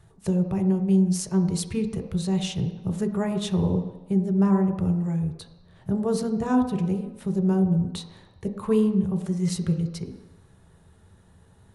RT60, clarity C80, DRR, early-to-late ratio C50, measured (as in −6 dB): 1.0 s, 10.0 dB, 3.5 dB, 8.5 dB